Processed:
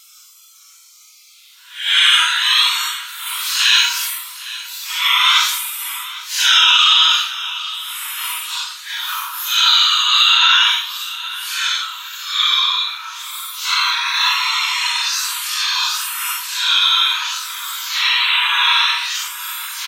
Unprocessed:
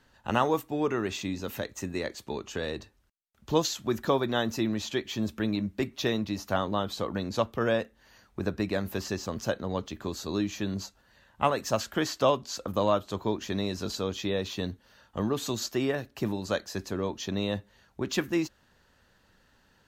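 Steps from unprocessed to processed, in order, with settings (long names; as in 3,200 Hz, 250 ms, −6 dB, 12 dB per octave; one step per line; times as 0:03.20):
gate on every frequency bin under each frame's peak −25 dB weak
in parallel at −1 dB: downward compressor, threshold −56 dBFS, peak gain reduction 19 dB
on the sum: Chebyshev high-pass with heavy ripple 940 Hz, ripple 6 dB
extreme stretch with random phases 5.7×, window 0.05 s, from 0:11.09
on a send: repeating echo 806 ms, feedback 41%, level −17.5 dB
on the sum: boost into a limiter +33 dB
level −1 dB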